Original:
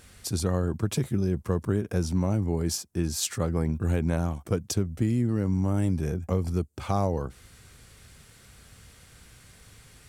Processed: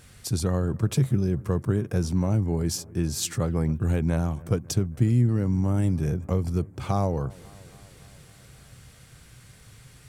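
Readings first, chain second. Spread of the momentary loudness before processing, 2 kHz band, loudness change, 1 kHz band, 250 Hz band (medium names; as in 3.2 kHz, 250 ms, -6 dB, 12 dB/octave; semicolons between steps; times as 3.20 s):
4 LU, 0.0 dB, +2.0 dB, 0.0 dB, +1.5 dB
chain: peaking EQ 130 Hz +9.5 dB 0.45 oct; on a send: bucket-brigade echo 274 ms, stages 4096, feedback 69%, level -23 dB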